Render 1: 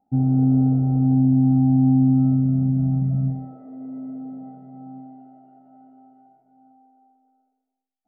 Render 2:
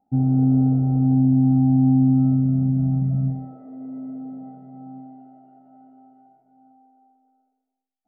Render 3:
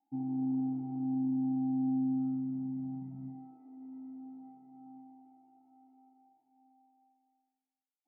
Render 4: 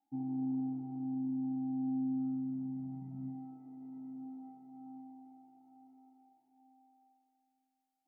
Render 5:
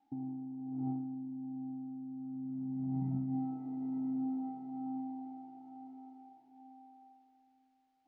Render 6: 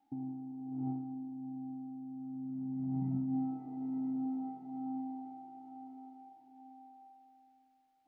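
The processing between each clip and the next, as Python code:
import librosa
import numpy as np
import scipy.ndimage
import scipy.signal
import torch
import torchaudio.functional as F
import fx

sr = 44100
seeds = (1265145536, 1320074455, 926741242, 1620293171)

y1 = x
y2 = fx.vowel_filter(y1, sr, vowel='u')
y2 = fx.peak_eq(y2, sr, hz=210.0, db=-11.0, octaves=2.7)
y2 = y2 * librosa.db_to_amplitude(4.5)
y3 = fx.rider(y2, sr, range_db=4, speed_s=2.0)
y3 = y3 + 10.0 ** (-17.5 / 20.0) * np.pad(y3, (int(950 * sr / 1000.0), 0))[:len(y3)]
y3 = y3 * librosa.db_to_amplitude(-3.5)
y4 = fx.over_compress(y3, sr, threshold_db=-44.0, ratio=-1.0)
y4 = fx.air_absorb(y4, sr, metres=170.0)
y4 = y4 * librosa.db_to_amplitude(5.5)
y5 = fx.echo_feedback(y4, sr, ms=198, feedback_pct=56, wet_db=-15.0)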